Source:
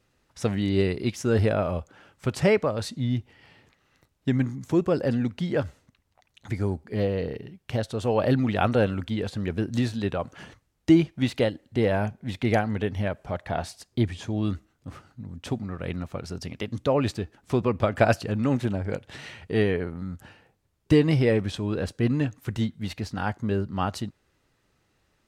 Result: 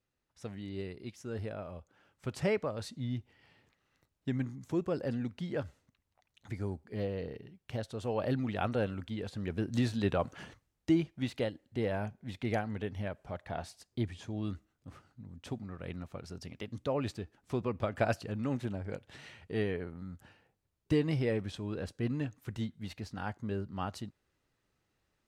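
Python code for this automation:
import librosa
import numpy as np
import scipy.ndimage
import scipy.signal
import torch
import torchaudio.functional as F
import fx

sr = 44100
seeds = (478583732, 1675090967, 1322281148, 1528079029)

y = fx.gain(x, sr, db=fx.line((1.75, -17.0), (2.37, -10.0), (9.21, -10.0), (10.23, -1.5), (10.91, -10.0)))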